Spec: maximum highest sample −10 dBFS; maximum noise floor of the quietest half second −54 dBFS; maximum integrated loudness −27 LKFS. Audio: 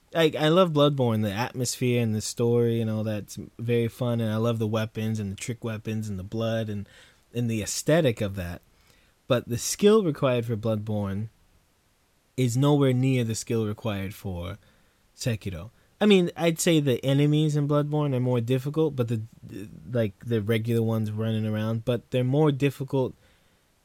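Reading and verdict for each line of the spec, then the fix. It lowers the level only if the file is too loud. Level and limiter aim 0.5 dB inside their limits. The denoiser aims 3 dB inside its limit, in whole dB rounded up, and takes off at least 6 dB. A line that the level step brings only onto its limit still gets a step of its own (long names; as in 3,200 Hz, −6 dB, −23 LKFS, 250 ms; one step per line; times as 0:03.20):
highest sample −6.0 dBFS: out of spec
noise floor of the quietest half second −66 dBFS: in spec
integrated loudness −25.5 LKFS: out of spec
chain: level −2 dB
brickwall limiter −10.5 dBFS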